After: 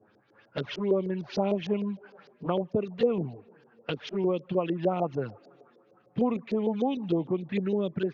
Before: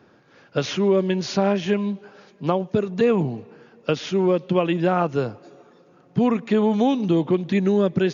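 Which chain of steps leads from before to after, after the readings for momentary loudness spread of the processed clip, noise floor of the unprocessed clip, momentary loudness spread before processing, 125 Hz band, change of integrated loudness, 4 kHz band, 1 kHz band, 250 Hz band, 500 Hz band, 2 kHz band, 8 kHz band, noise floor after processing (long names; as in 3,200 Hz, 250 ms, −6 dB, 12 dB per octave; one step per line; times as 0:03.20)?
11 LU, −55 dBFS, 9 LU, −9.0 dB, −8.0 dB, −9.5 dB, −8.5 dB, −8.5 dB, −7.5 dB, −10.5 dB, can't be measured, −64 dBFS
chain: speech leveller 0.5 s
flanger swept by the level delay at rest 10.1 ms, full sweep at −16 dBFS
auto-filter low-pass saw up 6.6 Hz 430–5,600 Hz
level −7.5 dB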